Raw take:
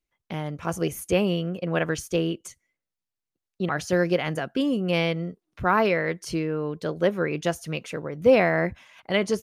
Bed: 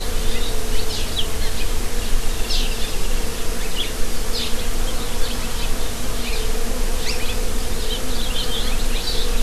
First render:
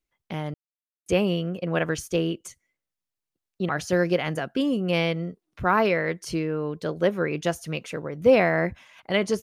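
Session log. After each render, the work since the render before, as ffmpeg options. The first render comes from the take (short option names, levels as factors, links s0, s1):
-filter_complex "[0:a]asplit=3[s0][s1][s2];[s0]atrim=end=0.54,asetpts=PTS-STARTPTS,afade=t=out:st=0.536:d=0.004:c=hsin[s3];[s1]atrim=start=0.54:end=1.06,asetpts=PTS-STARTPTS,volume=0[s4];[s2]atrim=start=1.06,asetpts=PTS-STARTPTS,afade=t=in:d=0.004:c=hsin[s5];[s3][s4][s5]concat=n=3:v=0:a=1"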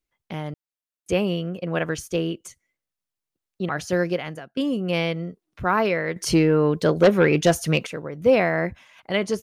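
-filter_complex "[0:a]asettb=1/sr,asplit=3[s0][s1][s2];[s0]atrim=end=6.164[s3];[s1]atrim=start=6.16:end=7.87,asetpts=PTS-STARTPTS,afade=t=in:d=0.004:c=qsin,afade=t=out:st=1.706:d=0.004:c=qsin,aeval=exprs='0.376*sin(PI/2*2*val(0)/0.376)':c=same[s4];[s2]atrim=start=7.866[s5];[s3][s4]acrossfade=d=0.004:c1=hsin:c2=qsin[s6];[s6][s5]acrossfade=d=0.004:c1=qsin:c2=hsin,asplit=2[s7][s8];[s7]atrim=end=4.57,asetpts=PTS-STARTPTS,afade=t=out:st=4.01:d=0.56:silence=0.112202[s9];[s8]atrim=start=4.57,asetpts=PTS-STARTPTS,afade=t=in:d=0.004:c=hsin:silence=0.112202[s10];[s9][s10]concat=n=2:v=0:a=1"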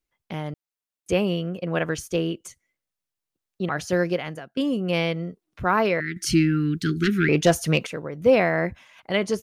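-filter_complex "[0:a]asettb=1/sr,asplit=3[s0][s1][s2];[s0]atrim=end=6.004[s3];[s1]atrim=start=6:end=7.29,asetpts=PTS-STARTPTS,afade=t=in:d=0.004:c=qsin,afade=t=out:st=1.286:d=0.004:c=qsin,asuperstop=centerf=700:order=12:qfactor=0.7[s4];[s2]atrim=start=7.286[s5];[s3][s4]acrossfade=d=0.004:c1=hsin:c2=qsin[s6];[s6][s5]acrossfade=d=0.004:c1=qsin:c2=hsin"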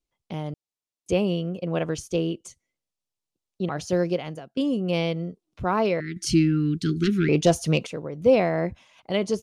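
-af "lowpass=8900,equalizer=f=1700:w=1.4:g=-10"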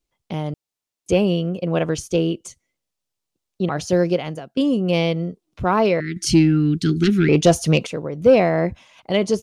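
-af "acontrast=45"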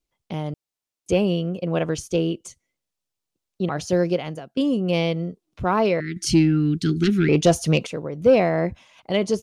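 -af "volume=0.75"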